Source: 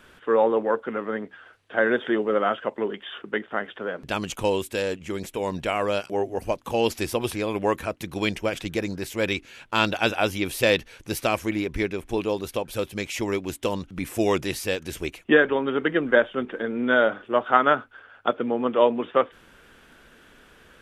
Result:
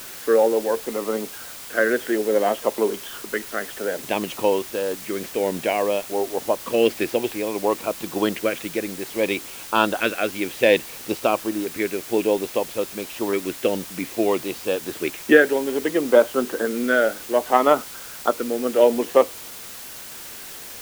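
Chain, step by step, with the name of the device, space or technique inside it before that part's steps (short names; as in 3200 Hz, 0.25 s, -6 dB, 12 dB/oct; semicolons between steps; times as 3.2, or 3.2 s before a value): shortwave radio (BPF 250–2600 Hz; tremolo 0.73 Hz, depth 42%; LFO notch saw up 0.6 Hz 790–2400 Hz; white noise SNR 15 dB); gain +7 dB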